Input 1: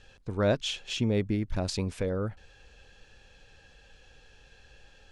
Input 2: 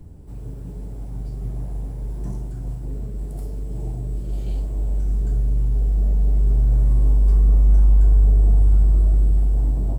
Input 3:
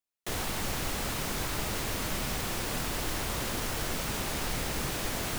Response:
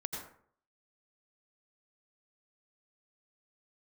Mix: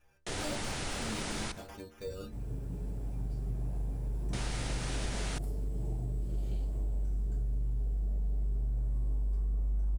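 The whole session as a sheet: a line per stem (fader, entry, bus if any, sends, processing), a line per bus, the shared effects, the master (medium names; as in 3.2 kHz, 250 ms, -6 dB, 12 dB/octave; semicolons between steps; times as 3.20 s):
+1.0 dB, 0.00 s, no send, flange 0.44 Hz, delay 1.1 ms, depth 5.4 ms, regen +66%; sample-rate reducer 4.1 kHz, jitter 0%; inharmonic resonator 70 Hz, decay 0.44 s, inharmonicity 0.008
-5.0 dB, 2.05 s, no send, none
-4.0 dB, 0.00 s, muted 1.52–4.33 s, send -10.5 dB, elliptic low-pass 9.7 kHz; band-stop 1.1 kHz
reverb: on, RT60 0.55 s, pre-delay 77 ms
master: compression 6:1, threshold -30 dBFS, peak gain reduction 13.5 dB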